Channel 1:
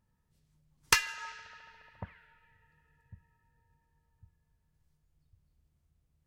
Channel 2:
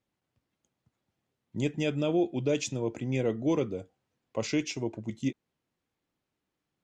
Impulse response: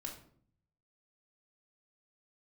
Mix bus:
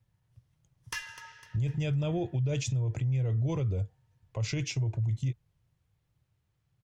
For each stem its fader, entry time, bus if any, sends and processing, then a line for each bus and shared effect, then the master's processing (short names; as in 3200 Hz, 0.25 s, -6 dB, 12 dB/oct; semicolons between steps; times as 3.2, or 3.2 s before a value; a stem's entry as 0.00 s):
-6.5 dB, 0.00 s, no send, echo send -22.5 dB, ripple EQ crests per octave 1.2, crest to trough 6 dB
+0.5 dB, 0.00 s, no send, no echo send, resonant low shelf 170 Hz +13 dB, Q 3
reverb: off
echo: feedback echo 0.252 s, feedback 54%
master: limiter -24 dBFS, peak gain reduction 14.5 dB